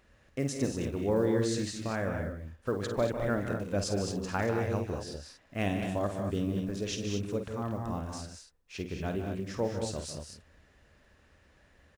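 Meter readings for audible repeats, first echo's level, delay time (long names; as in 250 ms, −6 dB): 4, −8.5 dB, 50 ms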